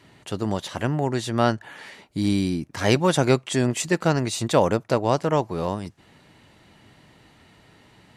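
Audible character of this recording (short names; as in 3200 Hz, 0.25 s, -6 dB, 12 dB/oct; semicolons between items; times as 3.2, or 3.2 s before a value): noise floor -55 dBFS; spectral tilt -5.5 dB/oct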